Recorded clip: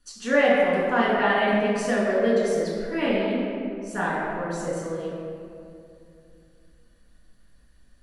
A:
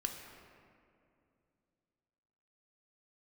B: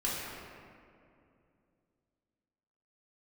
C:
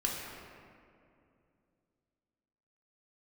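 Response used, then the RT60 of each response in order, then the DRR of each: B; 2.5, 2.5, 2.5 s; 3.0, -7.5, -3.0 dB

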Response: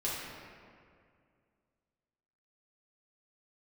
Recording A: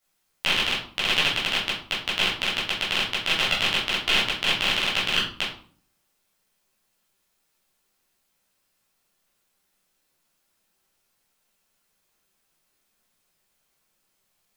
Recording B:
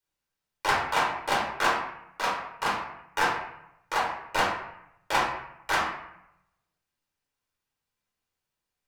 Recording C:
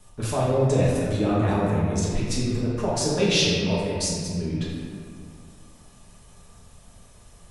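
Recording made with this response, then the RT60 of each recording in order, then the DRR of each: C; 0.50, 0.80, 2.2 s; -8.5, -4.0, -7.5 dB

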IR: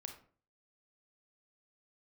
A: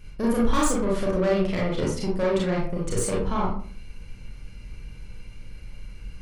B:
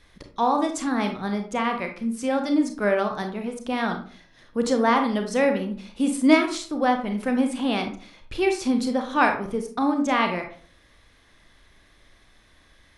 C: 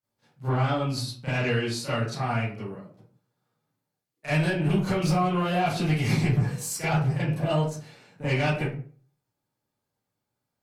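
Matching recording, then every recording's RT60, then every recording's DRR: B; 0.45, 0.45, 0.45 s; -4.5, 4.5, -14.5 dB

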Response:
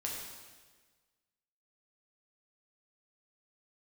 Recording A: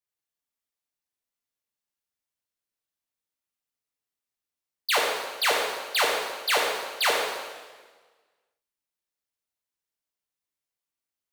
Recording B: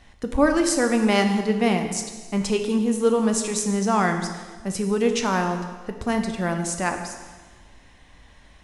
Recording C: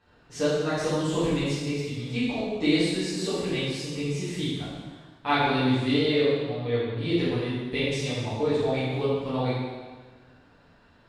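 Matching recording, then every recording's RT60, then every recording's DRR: A; 1.4, 1.4, 1.4 s; -3.0, 5.0, -12.0 dB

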